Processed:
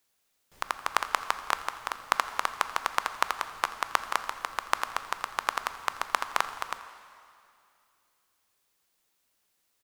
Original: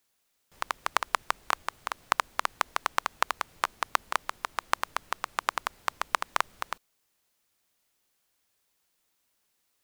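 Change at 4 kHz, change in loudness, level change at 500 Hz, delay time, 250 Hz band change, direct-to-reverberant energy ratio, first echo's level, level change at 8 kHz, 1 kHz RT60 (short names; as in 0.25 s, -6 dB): +0.5 dB, +0.5 dB, +0.5 dB, 84 ms, 0.0 dB, 10.0 dB, -19.5 dB, +0.5 dB, 2.5 s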